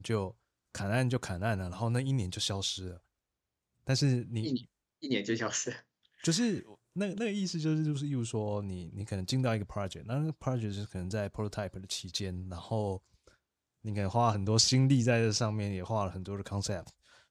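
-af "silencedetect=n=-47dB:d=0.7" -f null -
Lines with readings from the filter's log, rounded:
silence_start: 2.97
silence_end: 3.87 | silence_duration: 0.90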